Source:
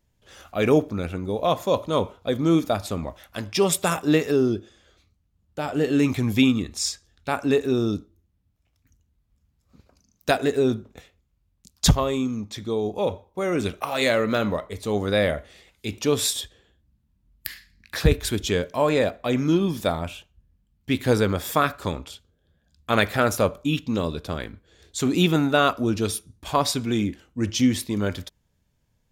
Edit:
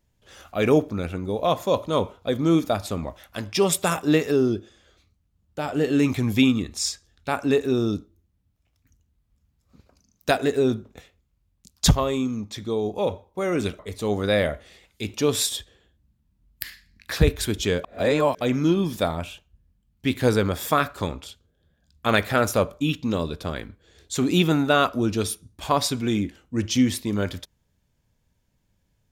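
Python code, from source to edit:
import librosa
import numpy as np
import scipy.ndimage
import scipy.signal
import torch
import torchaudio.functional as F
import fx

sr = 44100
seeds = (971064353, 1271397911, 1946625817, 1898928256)

y = fx.edit(x, sr, fx.cut(start_s=13.79, length_s=0.84),
    fx.reverse_span(start_s=18.68, length_s=0.57), tone=tone)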